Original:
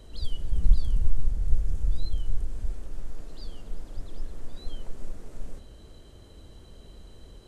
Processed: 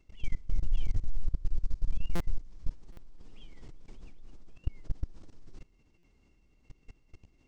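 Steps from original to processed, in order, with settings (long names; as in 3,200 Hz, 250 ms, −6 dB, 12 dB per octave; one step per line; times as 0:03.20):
pitch shift by two crossfaded delay taps −6.5 semitones
output level in coarse steps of 22 dB
buffer that repeats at 0:02.15/0:02.92/0:05.98, samples 256, times 8
level +1.5 dB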